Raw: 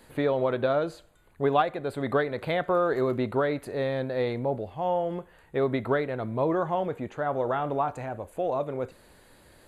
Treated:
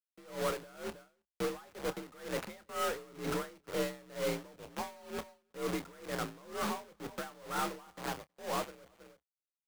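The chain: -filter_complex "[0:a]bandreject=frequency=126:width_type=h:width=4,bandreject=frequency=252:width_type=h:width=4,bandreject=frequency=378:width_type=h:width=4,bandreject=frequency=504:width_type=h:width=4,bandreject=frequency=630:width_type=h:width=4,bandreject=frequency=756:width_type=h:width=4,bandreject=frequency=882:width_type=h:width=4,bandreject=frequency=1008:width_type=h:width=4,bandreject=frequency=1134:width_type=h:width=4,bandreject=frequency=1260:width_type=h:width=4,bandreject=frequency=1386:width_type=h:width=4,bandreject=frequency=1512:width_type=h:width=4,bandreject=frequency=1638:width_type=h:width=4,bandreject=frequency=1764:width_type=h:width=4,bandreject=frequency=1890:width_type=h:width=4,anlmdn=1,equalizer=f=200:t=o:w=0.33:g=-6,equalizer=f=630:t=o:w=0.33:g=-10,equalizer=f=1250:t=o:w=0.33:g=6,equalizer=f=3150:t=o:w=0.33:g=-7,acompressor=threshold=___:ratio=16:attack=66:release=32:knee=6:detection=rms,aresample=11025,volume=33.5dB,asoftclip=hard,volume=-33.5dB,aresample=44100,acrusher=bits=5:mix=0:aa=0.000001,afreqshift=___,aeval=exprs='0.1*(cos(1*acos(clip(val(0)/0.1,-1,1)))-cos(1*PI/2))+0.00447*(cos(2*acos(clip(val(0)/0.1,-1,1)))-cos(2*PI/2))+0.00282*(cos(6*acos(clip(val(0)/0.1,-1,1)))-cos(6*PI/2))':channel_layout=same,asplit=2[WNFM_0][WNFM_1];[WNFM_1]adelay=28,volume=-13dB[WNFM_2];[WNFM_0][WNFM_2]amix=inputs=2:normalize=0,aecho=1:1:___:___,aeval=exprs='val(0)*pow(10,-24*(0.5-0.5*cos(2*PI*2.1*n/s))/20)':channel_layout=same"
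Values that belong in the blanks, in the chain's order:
-29dB, 50, 320, 0.0891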